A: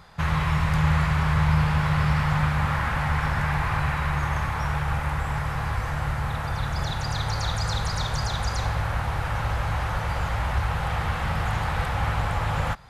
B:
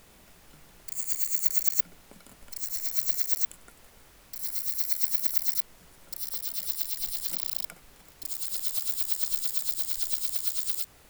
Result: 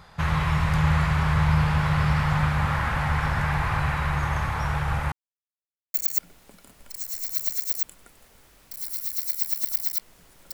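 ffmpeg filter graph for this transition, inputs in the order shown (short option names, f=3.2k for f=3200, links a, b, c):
-filter_complex "[0:a]apad=whole_dur=10.53,atrim=end=10.53,asplit=2[a][b];[a]atrim=end=5.12,asetpts=PTS-STARTPTS,afade=t=out:st=5.116:d=0.004:c=hsin[c];[b]atrim=start=5.12:end=5.94,asetpts=PTS-STARTPTS,volume=0[d];[1:a]atrim=start=1.56:end=6.15,asetpts=PTS-STARTPTS,afade=t=in:d=0.004:c=hsin[e];[c][d][e]concat=n=3:v=0:a=1"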